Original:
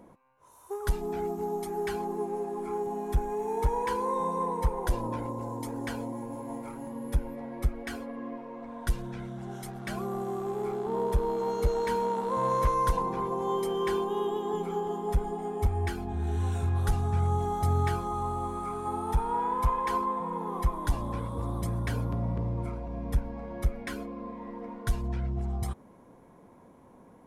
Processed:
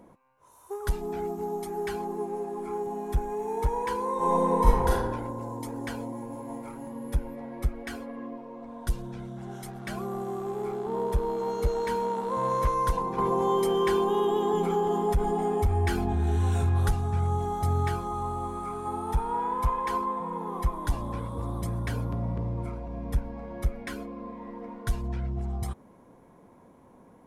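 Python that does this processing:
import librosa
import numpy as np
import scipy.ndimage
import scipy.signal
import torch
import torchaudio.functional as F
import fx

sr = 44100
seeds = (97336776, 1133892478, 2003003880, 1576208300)

y = fx.reverb_throw(x, sr, start_s=4.16, length_s=0.72, rt60_s=1.0, drr_db=-7.0)
y = fx.peak_eq(y, sr, hz=1900.0, db=-6.0, octaves=1.2, at=(8.26, 9.37))
y = fx.env_flatten(y, sr, amount_pct=50, at=(13.18, 16.92))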